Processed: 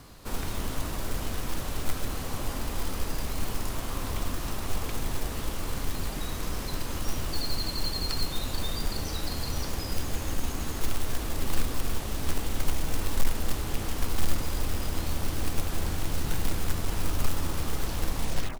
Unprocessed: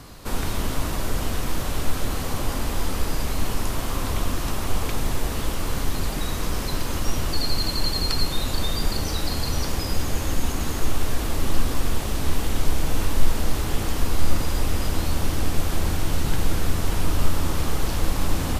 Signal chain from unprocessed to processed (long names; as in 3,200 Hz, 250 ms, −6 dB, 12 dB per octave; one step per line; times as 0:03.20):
turntable brake at the end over 0.44 s
floating-point word with a short mantissa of 2 bits
level −6.5 dB